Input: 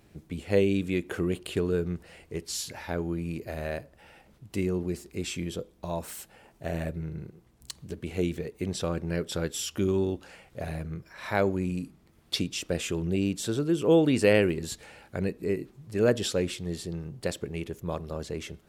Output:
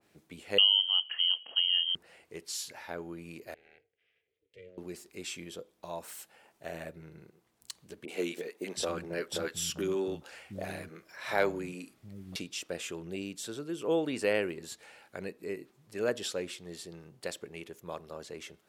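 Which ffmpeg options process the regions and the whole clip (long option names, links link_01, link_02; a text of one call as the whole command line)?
ffmpeg -i in.wav -filter_complex "[0:a]asettb=1/sr,asplit=3[link_01][link_02][link_03];[link_01]atrim=end=0.584[link_04];[link_02]atrim=start=0.58:end=1.95,asetpts=PTS-STARTPTS,afade=type=in:duration=0.004:curve=qsin,afade=type=out:start_time=1.366:duration=0.004:curve=qsin,tiltshelf=frequency=890:gain=7,lowpass=frequency=2800:width_type=q:width=0.5098,lowpass=frequency=2800:width_type=q:width=0.6013,lowpass=frequency=2800:width_type=q:width=0.9,lowpass=frequency=2800:width_type=q:width=2.563,afreqshift=-3300[link_05];[link_03]atrim=start=1.946[link_06];[link_04][link_05]acrossfade=duration=0.004:curve1=hsin:curve2=qsin[link_07];[link_07][link_06]acrossfade=duration=0.004:curve1=qsin:curve2=hsin,asettb=1/sr,asplit=3[link_08][link_09][link_10];[link_08]atrim=end=3.544[link_11];[link_09]atrim=start=3.54:end=4.78,asetpts=PTS-STARTPTS,afade=type=in:duration=0.004:curve=qsin,afade=type=out:start_time=1.236:duration=0.004:curve=qsin,volume=21dB,asoftclip=hard,volume=-21dB,asplit=3[link_12][link_13][link_14];[link_12]bandpass=frequency=270:width_type=q:width=8,volume=0dB[link_15];[link_13]bandpass=frequency=2290:width_type=q:width=8,volume=-6dB[link_16];[link_14]bandpass=frequency=3010:width_type=q:width=8,volume=-9dB[link_17];[link_15][link_16][link_17]amix=inputs=3:normalize=0,aeval=exprs='val(0)*sin(2*PI*180*n/s)':channel_layout=same[link_18];[link_10]atrim=start=4.776[link_19];[link_11][link_18]acrossfade=duration=0.004:curve1=hsin:curve2=qsin[link_20];[link_20][link_19]acrossfade=duration=0.004:curve1=qsin:curve2=hsin,asettb=1/sr,asplit=3[link_21][link_22][link_23];[link_21]atrim=end=8.054[link_24];[link_22]atrim=start=8.05:end=12.36,asetpts=PTS-STARTPTS,afade=type=in:duration=0.004:curve=qsin,afade=type=out:start_time=4.306:duration=0.004:curve=qsin,acontrast=46,acrossover=split=190|950[link_25][link_26][link_27];[link_27]adelay=30[link_28];[link_25]adelay=720[link_29];[link_29][link_26][link_28]amix=inputs=3:normalize=0,atrim=end_sample=190071[link_30];[link_23]atrim=start=12.356[link_31];[link_24][link_30]acrossfade=duration=0.004:curve1=hsin:curve2=qsin[link_32];[link_32][link_31]acrossfade=duration=0.004:curve1=qsin:curve2=hsin,asettb=1/sr,asplit=3[link_33][link_34][link_35];[link_33]atrim=end=13.224[link_36];[link_34]atrim=start=13.22:end=13.81,asetpts=PTS-STARTPTS,afade=type=in:duration=0.004:curve=qsin,afade=type=out:start_time=0.586:duration=0.004:curve=qsin,highpass=57,equalizer=frequency=800:width=0.49:gain=-3[link_37];[link_35]atrim=start=13.806[link_38];[link_36][link_37]acrossfade=duration=0.004:curve1=hsin:curve2=qsin[link_39];[link_39][link_38]acrossfade=duration=0.004:curve1=qsin:curve2=hsin,highpass=frequency=640:poles=1,adynamicequalizer=threshold=0.00447:dfrequency=1900:dqfactor=0.7:tfrequency=1900:tqfactor=0.7:attack=5:release=100:ratio=0.375:range=2:mode=cutabove:tftype=highshelf,volume=-3dB" out.wav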